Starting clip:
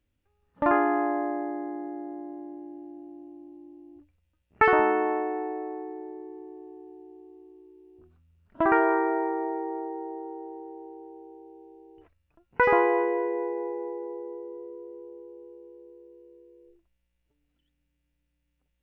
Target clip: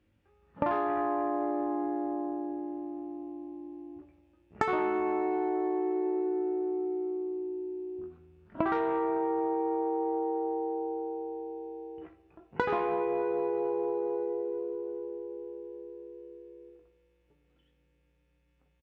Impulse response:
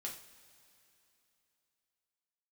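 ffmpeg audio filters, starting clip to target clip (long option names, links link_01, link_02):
-filter_complex "[0:a]aeval=exprs='0.473*(cos(1*acos(clip(val(0)/0.473,-1,1)))-cos(1*PI/2))+0.0668*(cos(3*acos(clip(val(0)/0.473,-1,1)))-cos(3*PI/2))+0.0188*(cos(4*acos(clip(val(0)/0.473,-1,1)))-cos(4*PI/2))+0.0668*(cos(5*acos(clip(val(0)/0.473,-1,1)))-cos(5*PI/2))+0.00335*(cos(8*acos(clip(val(0)/0.473,-1,1)))-cos(8*PI/2))':channel_layout=same,highpass=68,aemphasis=mode=reproduction:type=75kf,asplit=2[link_01][link_02];[link_02]adelay=19,volume=-6dB[link_03];[link_01][link_03]amix=inputs=2:normalize=0,asplit=2[link_04][link_05];[1:a]atrim=start_sample=2205[link_06];[link_05][link_06]afir=irnorm=-1:irlink=0,volume=2dB[link_07];[link_04][link_07]amix=inputs=2:normalize=0,acompressor=threshold=-28dB:ratio=8,volume=1.5dB"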